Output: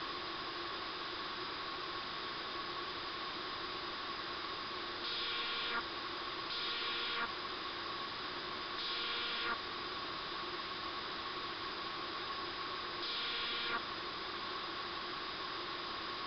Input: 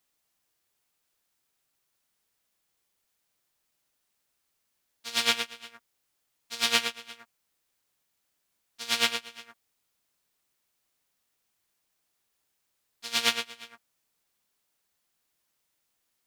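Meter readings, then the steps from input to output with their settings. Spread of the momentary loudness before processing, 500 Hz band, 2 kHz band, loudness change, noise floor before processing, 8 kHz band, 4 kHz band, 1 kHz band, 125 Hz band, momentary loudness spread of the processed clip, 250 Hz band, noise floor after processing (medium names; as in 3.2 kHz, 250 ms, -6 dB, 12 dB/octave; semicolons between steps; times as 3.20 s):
20 LU, -0.5 dB, -4.5 dB, -12.0 dB, -78 dBFS, under -25 dB, -5.0 dB, +3.0 dB, +4.5 dB, 5 LU, +1.5 dB, -44 dBFS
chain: one-bit comparator; rippled Chebyshev low-pass 5.1 kHz, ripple 6 dB; small resonant body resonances 350/1100 Hz, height 14 dB, ringing for 60 ms; trim +3.5 dB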